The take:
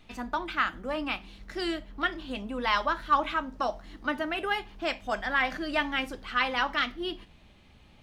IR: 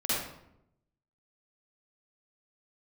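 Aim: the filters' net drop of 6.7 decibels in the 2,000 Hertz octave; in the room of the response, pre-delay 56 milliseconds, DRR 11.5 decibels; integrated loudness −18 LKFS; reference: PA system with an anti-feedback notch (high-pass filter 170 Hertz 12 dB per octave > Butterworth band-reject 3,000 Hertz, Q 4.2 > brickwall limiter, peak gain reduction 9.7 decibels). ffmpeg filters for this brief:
-filter_complex "[0:a]equalizer=frequency=2000:width_type=o:gain=-8.5,asplit=2[link_01][link_02];[1:a]atrim=start_sample=2205,adelay=56[link_03];[link_02][link_03]afir=irnorm=-1:irlink=0,volume=-20.5dB[link_04];[link_01][link_04]amix=inputs=2:normalize=0,highpass=170,asuperstop=centerf=3000:order=8:qfactor=4.2,volume=17.5dB,alimiter=limit=-7dB:level=0:latency=1"

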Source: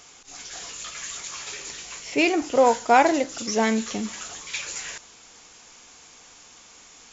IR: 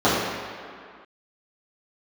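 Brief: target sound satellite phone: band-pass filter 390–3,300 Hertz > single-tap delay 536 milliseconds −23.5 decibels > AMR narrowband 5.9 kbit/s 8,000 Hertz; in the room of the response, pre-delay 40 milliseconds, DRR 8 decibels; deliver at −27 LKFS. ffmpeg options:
-filter_complex "[0:a]asplit=2[link_01][link_02];[1:a]atrim=start_sample=2205,adelay=40[link_03];[link_02][link_03]afir=irnorm=-1:irlink=0,volume=-31dB[link_04];[link_01][link_04]amix=inputs=2:normalize=0,highpass=390,lowpass=3300,aecho=1:1:536:0.0668,volume=-3.5dB" -ar 8000 -c:a libopencore_amrnb -b:a 5900

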